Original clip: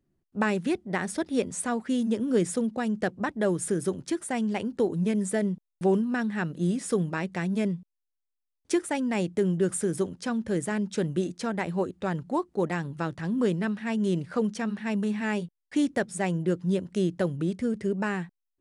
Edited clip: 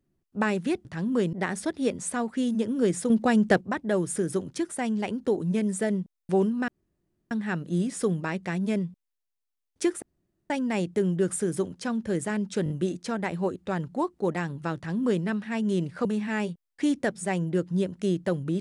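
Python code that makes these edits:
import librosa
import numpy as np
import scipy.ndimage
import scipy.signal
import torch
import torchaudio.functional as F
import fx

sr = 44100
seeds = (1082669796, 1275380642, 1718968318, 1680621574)

y = fx.edit(x, sr, fx.clip_gain(start_s=2.62, length_s=0.51, db=7.0),
    fx.insert_room_tone(at_s=6.2, length_s=0.63),
    fx.insert_room_tone(at_s=8.91, length_s=0.48),
    fx.stutter(start_s=11.05, slice_s=0.02, count=4),
    fx.duplicate(start_s=13.11, length_s=0.48, to_s=0.85),
    fx.cut(start_s=14.4, length_s=0.58), tone=tone)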